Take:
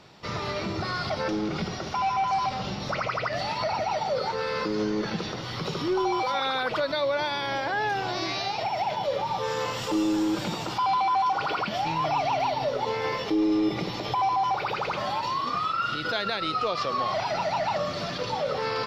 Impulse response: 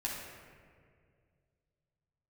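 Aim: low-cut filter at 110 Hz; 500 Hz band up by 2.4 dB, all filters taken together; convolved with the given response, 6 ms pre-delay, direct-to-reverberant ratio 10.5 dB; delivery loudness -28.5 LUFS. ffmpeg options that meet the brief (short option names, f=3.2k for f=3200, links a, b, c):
-filter_complex "[0:a]highpass=110,equalizer=f=500:t=o:g=3,asplit=2[a][b];[1:a]atrim=start_sample=2205,adelay=6[c];[b][c]afir=irnorm=-1:irlink=0,volume=-13.5dB[d];[a][d]amix=inputs=2:normalize=0,volume=-2.5dB"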